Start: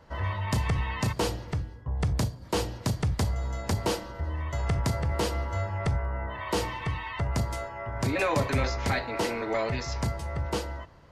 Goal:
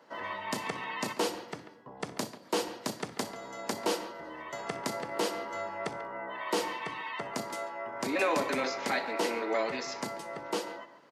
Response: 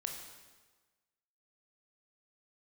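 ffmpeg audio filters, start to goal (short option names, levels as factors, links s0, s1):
-filter_complex "[0:a]highpass=f=230:w=0.5412,highpass=f=230:w=1.3066,asplit=2[s0][s1];[s1]adelay=140,highpass=300,lowpass=3400,asoftclip=type=hard:threshold=0.0631,volume=0.251[s2];[s0][s2]amix=inputs=2:normalize=0,asplit=2[s3][s4];[1:a]atrim=start_sample=2205,atrim=end_sample=3528,adelay=62[s5];[s4][s5]afir=irnorm=-1:irlink=0,volume=0.178[s6];[s3][s6]amix=inputs=2:normalize=0,volume=0.841"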